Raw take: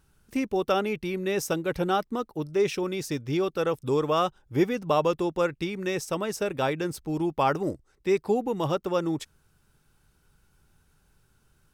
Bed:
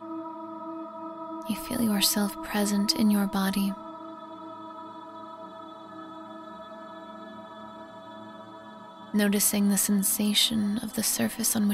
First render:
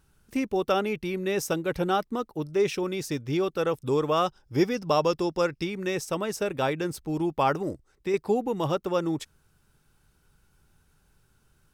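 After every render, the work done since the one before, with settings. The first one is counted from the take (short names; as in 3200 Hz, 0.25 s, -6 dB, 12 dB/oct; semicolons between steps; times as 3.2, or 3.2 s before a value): 4.26–5.63 bell 5200 Hz +14 dB 0.26 oct; 7.52–8.14 compressor 2:1, threshold -26 dBFS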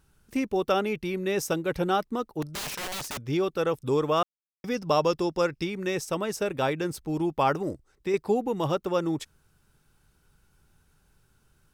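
2.42–3.28 wrapped overs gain 29 dB; 4.23–4.64 mute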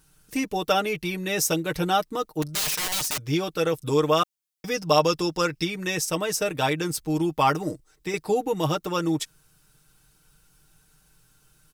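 high shelf 2900 Hz +10 dB; comb 6.5 ms, depth 64%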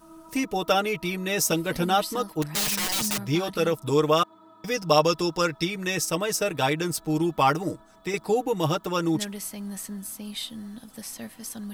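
add bed -11.5 dB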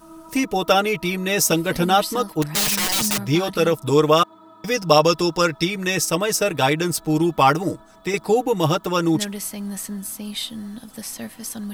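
gain +5.5 dB; limiter -1 dBFS, peak gain reduction 2 dB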